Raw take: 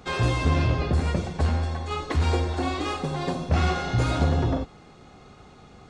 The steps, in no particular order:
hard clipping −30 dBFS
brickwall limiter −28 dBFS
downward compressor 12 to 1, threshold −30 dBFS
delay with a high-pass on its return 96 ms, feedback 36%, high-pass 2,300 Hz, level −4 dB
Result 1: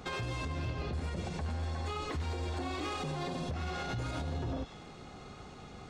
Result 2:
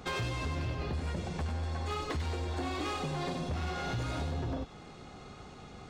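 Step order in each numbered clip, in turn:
delay with a high-pass on its return, then downward compressor, then brickwall limiter, then hard clipping
downward compressor, then hard clipping, then brickwall limiter, then delay with a high-pass on its return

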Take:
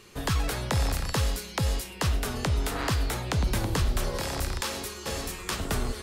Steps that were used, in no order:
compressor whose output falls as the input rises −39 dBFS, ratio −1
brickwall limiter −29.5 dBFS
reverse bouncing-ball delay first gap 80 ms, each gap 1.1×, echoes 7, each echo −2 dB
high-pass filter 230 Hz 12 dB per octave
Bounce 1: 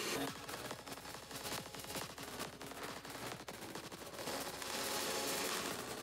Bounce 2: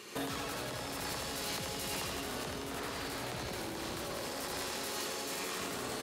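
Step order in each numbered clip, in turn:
reverse bouncing-ball delay, then compressor whose output falls as the input rises, then high-pass filter, then brickwall limiter
high-pass filter, then brickwall limiter, then reverse bouncing-ball delay, then compressor whose output falls as the input rises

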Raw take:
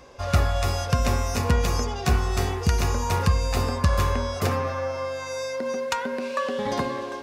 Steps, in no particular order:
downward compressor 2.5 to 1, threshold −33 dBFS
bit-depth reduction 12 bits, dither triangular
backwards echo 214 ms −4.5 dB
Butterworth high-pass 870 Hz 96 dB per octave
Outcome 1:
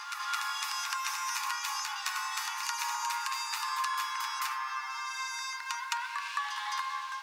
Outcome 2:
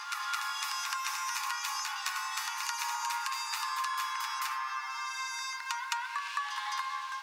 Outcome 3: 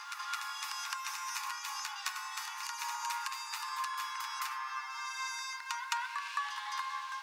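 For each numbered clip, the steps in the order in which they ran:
Butterworth high-pass, then downward compressor, then bit-depth reduction, then backwards echo
Butterworth high-pass, then bit-depth reduction, then backwards echo, then downward compressor
bit-depth reduction, then downward compressor, then Butterworth high-pass, then backwards echo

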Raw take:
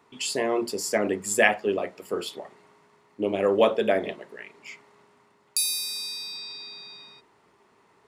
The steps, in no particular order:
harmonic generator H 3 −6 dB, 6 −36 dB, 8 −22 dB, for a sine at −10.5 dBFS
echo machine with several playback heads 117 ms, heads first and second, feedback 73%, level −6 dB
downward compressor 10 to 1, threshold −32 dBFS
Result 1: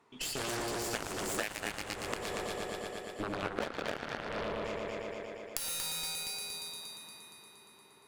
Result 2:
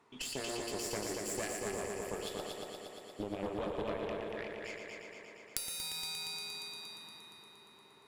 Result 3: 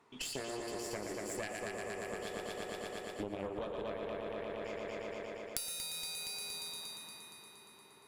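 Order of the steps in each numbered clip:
echo machine with several playback heads, then harmonic generator, then downward compressor
downward compressor, then echo machine with several playback heads, then harmonic generator
echo machine with several playback heads, then downward compressor, then harmonic generator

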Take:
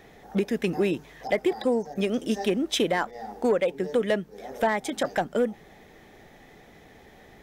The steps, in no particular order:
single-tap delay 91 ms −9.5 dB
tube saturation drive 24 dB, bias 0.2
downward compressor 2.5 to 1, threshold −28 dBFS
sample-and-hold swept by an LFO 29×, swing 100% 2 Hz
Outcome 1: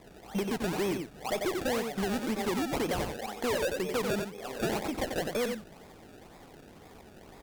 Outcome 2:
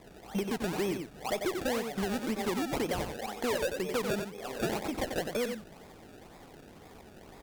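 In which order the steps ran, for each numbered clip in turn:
sample-and-hold swept by an LFO, then single-tap delay, then tube saturation, then downward compressor
sample-and-hold swept by an LFO, then single-tap delay, then downward compressor, then tube saturation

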